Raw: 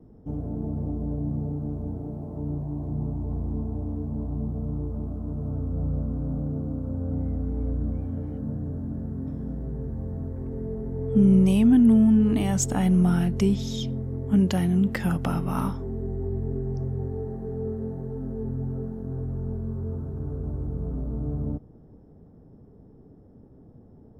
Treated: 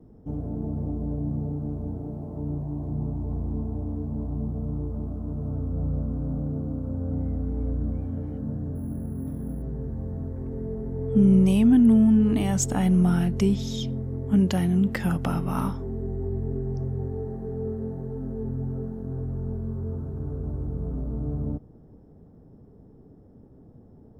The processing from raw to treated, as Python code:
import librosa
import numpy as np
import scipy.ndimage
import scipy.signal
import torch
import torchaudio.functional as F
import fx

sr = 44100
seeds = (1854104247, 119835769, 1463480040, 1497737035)

y = fx.resample_bad(x, sr, factor=4, down='filtered', up='hold', at=(8.75, 9.62))